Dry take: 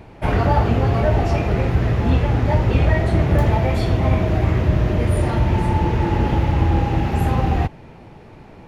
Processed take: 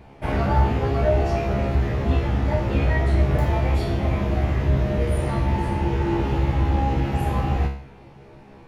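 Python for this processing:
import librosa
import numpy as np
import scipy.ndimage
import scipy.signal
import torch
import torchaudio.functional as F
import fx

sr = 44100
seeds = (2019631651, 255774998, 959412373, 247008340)

y = fx.comb_fb(x, sr, f0_hz=68.0, decay_s=0.51, harmonics='all', damping=0.0, mix_pct=90)
y = y * 10.0 ** (5.5 / 20.0)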